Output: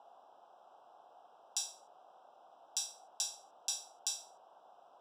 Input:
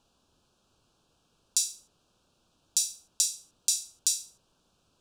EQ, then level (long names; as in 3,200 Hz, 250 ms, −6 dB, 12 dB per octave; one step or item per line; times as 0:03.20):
moving average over 20 samples
high-pass with resonance 740 Hz, resonance Q 4.9
+10.5 dB